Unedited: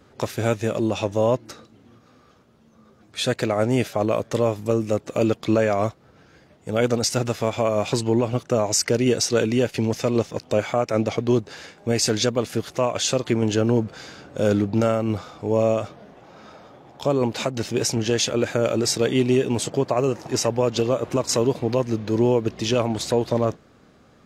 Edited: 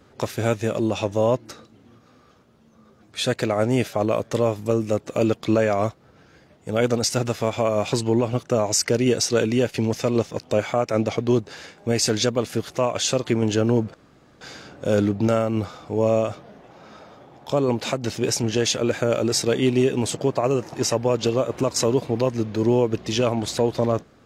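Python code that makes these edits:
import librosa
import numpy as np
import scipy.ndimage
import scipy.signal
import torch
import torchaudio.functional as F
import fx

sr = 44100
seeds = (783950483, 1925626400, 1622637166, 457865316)

y = fx.edit(x, sr, fx.insert_room_tone(at_s=13.94, length_s=0.47), tone=tone)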